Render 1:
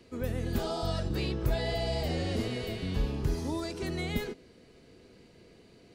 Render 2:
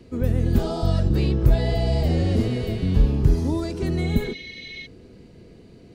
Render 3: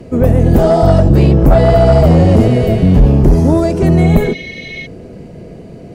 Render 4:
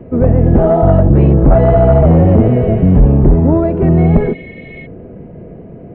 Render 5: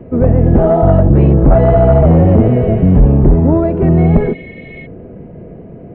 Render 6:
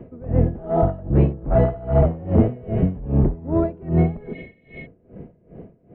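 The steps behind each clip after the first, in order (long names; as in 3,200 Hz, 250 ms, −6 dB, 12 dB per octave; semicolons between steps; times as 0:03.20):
low-shelf EQ 420 Hz +12 dB; healed spectral selection 0:04.07–0:04.84, 1,800–6,400 Hz before; level +1.5 dB
graphic EQ with 15 bands 160 Hz +6 dB, 630 Hz +10 dB, 4,000 Hz −8 dB; sine wavefolder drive 8 dB, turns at −2 dBFS
Gaussian smoothing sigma 4.2 samples
no processing that can be heard
tremolo with a sine in dB 2.5 Hz, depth 23 dB; level −5 dB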